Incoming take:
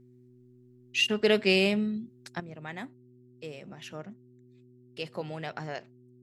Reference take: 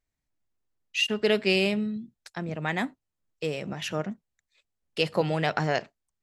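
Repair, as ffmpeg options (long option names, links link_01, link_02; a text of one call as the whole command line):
ffmpeg -i in.wav -af "bandreject=frequency=124:width_type=h:width=4,bandreject=frequency=248:width_type=h:width=4,bandreject=frequency=372:width_type=h:width=4,asetnsamples=nb_out_samples=441:pad=0,asendcmd='2.4 volume volume 11dB',volume=0dB" out.wav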